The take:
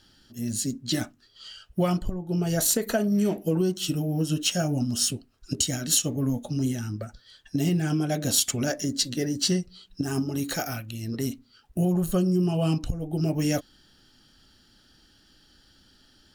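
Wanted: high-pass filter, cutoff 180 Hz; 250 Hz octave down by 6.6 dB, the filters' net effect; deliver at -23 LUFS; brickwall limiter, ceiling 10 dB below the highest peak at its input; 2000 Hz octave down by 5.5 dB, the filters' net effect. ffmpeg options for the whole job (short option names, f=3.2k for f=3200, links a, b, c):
-af "highpass=180,equalizer=f=250:t=o:g=-7,equalizer=f=2k:t=o:g=-8,volume=8.5dB,alimiter=limit=-10dB:level=0:latency=1"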